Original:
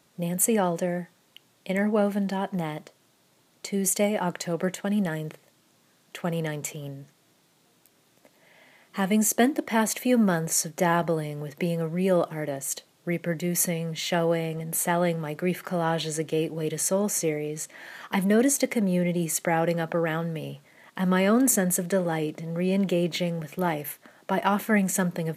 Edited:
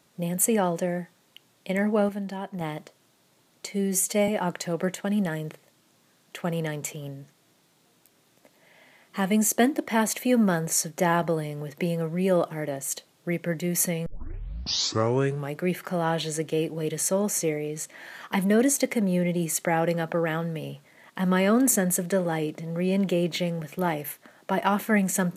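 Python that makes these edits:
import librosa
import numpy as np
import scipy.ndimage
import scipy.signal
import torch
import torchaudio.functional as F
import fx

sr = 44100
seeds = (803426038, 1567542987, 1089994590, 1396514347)

y = fx.edit(x, sr, fx.clip_gain(start_s=2.09, length_s=0.52, db=-5.5),
    fx.stretch_span(start_s=3.68, length_s=0.4, factor=1.5),
    fx.tape_start(start_s=13.86, length_s=1.49), tone=tone)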